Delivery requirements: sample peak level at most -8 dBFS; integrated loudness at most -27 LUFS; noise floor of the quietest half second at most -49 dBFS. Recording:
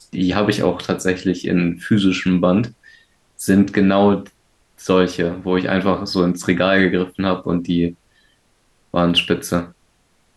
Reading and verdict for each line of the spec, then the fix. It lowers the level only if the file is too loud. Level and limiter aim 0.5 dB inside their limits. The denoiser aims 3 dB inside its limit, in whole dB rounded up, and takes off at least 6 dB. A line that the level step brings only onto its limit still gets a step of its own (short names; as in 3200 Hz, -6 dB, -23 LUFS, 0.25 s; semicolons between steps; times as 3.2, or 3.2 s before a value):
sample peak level -2.5 dBFS: fail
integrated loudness -18.0 LUFS: fail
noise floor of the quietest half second -60 dBFS: OK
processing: gain -9.5 dB